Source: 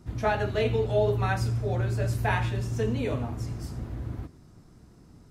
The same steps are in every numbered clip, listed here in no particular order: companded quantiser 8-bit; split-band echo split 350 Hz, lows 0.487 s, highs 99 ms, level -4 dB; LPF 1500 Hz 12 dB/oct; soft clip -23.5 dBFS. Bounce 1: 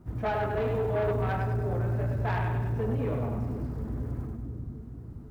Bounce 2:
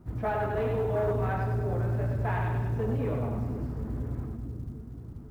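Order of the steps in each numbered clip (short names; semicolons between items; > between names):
LPF > companded quantiser > split-band echo > soft clip; split-band echo > soft clip > LPF > companded quantiser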